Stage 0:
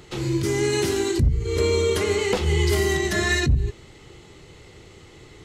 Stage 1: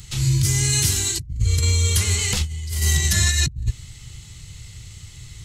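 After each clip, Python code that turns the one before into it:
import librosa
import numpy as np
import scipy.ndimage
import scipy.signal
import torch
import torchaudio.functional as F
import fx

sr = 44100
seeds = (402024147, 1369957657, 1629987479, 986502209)

y = fx.curve_eq(x, sr, hz=(120.0, 380.0, 7900.0), db=(0, -28, 3))
y = fx.over_compress(y, sr, threshold_db=-27.0, ratio=-0.5)
y = F.gain(torch.from_numpy(y), 8.0).numpy()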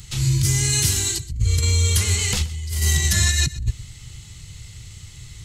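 y = x + 10.0 ** (-18.0 / 20.0) * np.pad(x, (int(125 * sr / 1000.0), 0))[:len(x)]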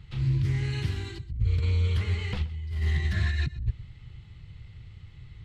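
y = fx.air_absorb(x, sr, metres=420.0)
y = fx.doppler_dist(y, sr, depth_ms=0.2)
y = F.gain(torch.from_numpy(y), -5.5).numpy()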